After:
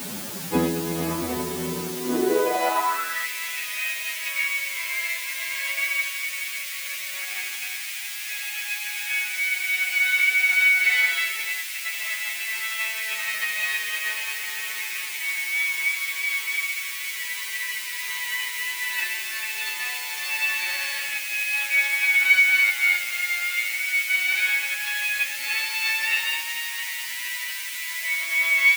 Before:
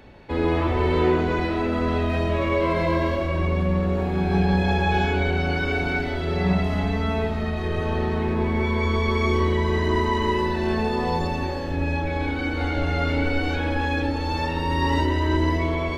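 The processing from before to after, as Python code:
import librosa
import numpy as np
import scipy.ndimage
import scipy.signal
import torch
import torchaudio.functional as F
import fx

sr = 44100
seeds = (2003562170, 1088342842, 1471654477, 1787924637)

y = fx.over_compress(x, sr, threshold_db=-26.0, ratio=-0.5)
y = fx.quant_dither(y, sr, seeds[0], bits=6, dither='triangular')
y = fx.stretch_vocoder(y, sr, factor=1.8)
y = fx.filter_sweep_highpass(y, sr, from_hz=180.0, to_hz=2200.0, start_s=1.92, end_s=3.28, q=4.3)
y = y * 10.0 ** (2.0 / 20.0)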